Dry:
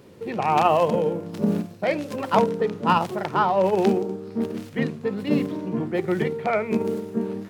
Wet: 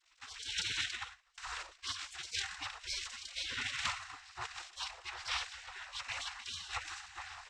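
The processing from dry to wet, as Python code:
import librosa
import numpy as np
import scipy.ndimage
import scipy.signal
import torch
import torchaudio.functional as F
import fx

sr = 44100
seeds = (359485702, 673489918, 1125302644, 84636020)

y = fx.backlash(x, sr, play_db=-40.5)
y = fx.noise_vocoder(y, sr, seeds[0], bands=12)
y = fx.spec_gate(y, sr, threshold_db=-30, keep='weak')
y = fx.upward_expand(y, sr, threshold_db=-59.0, expansion=2.5, at=(0.97, 1.38))
y = y * 10.0 ** (6.5 / 20.0)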